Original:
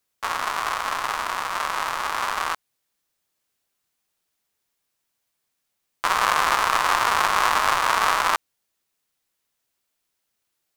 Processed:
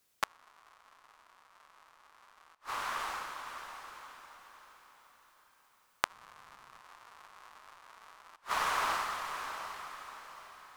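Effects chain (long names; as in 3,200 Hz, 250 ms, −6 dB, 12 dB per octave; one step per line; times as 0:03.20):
0:06.11–0:06.81: sub-octave generator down 1 octave, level +3 dB
feedback delay with all-pass diffusion 629 ms, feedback 40%, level −15 dB
gate with flip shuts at −14 dBFS, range −39 dB
level +3.5 dB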